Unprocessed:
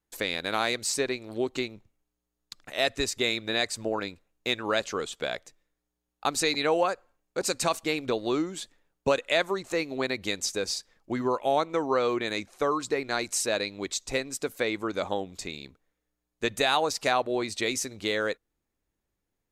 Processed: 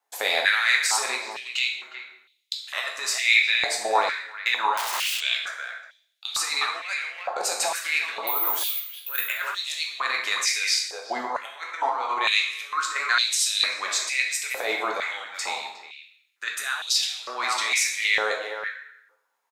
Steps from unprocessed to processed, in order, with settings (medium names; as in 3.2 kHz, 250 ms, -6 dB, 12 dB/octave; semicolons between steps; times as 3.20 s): speakerphone echo 360 ms, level -12 dB; compressor with a negative ratio -29 dBFS, ratio -0.5; 8.27–9.24 s: careless resampling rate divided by 3×, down filtered, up zero stuff; plate-style reverb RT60 0.88 s, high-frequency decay 0.75×, DRR -0.5 dB; 4.77–5.21 s: integer overflow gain 26 dB; step-sequenced high-pass 2.2 Hz 750–3400 Hz; trim +1.5 dB